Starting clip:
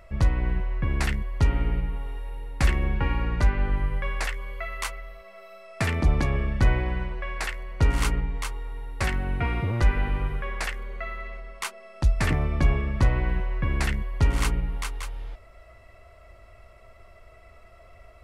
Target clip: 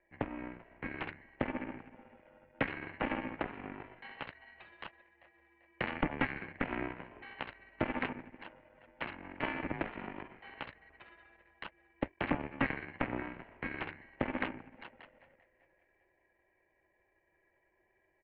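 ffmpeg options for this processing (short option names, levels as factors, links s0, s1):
-filter_complex "[0:a]asplit=2[s0][s1];[s1]acompressor=threshold=0.02:ratio=6,volume=1.12[s2];[s0][s2]amix=inputs=2:normalize=0,asplit=3[s3][s4][s5];[s3]bandpass=f=300:t=q:w=8,volume=1[s6];[s4]bandpass=f=870:t=q:w=8,volume=0.501[s7];[s5]bandpass=f=2240:t=q:w=8,volume=0.355[s8];[s6][s7][s8]amix=inputs=3:normalize=0,aecho=1:1:392|784|1176|1568:0.224|0.0985|0.0433|0.0191,aeval=exprs='0.0794*(cos(1*acos(clip(val(0)/0.0794,-1,1)))-cos(1*PI/2))+0.00224*(cos(3*acos(clip(val(0)/0.0794,-1,1)))-cos(3*PI/2))+0.0316*(cos(4*acos(clip(val(0)/0.0794,-1,1)))-cos(4*PI/2))+0.0126*(cos(7*acos(clip(val(0)/0.0794,-1,1)))-cos(7*PI/2))':c=same,highpass=f=430:t=q:w=0.5412,highpass=f=430:t=q:w=1.307,lowpass=f=3200:t=q:w=0.5176,lowpass=f=3200:t=q:w=0.7071,lowpass=f=3200:t=q:w=1.932,afreqshift=-320,volume=2.37"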